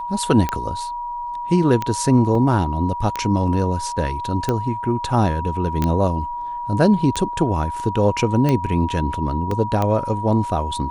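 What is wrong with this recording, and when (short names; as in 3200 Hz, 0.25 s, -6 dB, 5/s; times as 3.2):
tick 45 rpm -8 dBFS
tone 960 Hz -25 dBFS
2.35 gap 2.2 ms
5.84 pop -9 dBFS
9.51 gap 3.3 ms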